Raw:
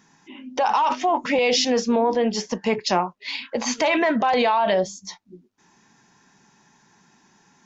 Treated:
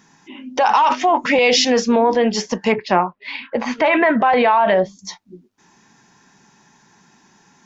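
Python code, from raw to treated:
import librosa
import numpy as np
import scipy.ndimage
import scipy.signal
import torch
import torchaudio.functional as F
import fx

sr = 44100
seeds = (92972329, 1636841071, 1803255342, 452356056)

y = fx.lowpass(x, sr, hz=2300.0, slope=12, at=(2.72, 4.99))
y = fx.dynamic_eq(y, sr, hz=1800.0, q=1.1, threshold_db=-36.0, ratio=4.0, max_db=4)
y = F.gain(torch.from_numpy(y), 4.5).numpy()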